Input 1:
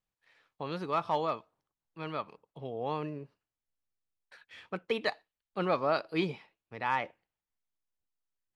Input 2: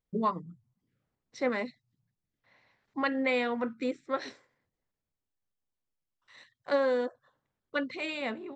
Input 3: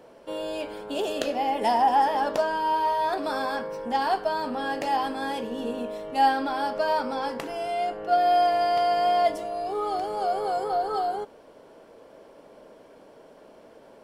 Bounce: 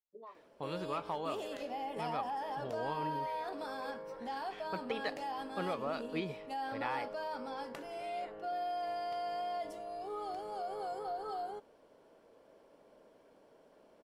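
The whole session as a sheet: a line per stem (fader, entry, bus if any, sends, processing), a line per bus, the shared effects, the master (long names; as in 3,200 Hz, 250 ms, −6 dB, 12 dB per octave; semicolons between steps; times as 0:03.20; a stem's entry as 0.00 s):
−3.5 dB, 0.00 s, no send, noise gate with hold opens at −58 dBFS; downward compressor, threshold −30 dBFS, peak gain reduction 7 dB
−16.5 dB, 0.00 s, no send, high-pass filter 450 Hz 24 dB per octave; spectral tilt −3 dB per octave; brickwall limiter −26 dBFS, peak gain reduction 9 dB
−12.5 dB, 0.35 s, no send, brickwall limiter −19.5 dBFS, peak gain reduction 9.5 dB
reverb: not used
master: no processing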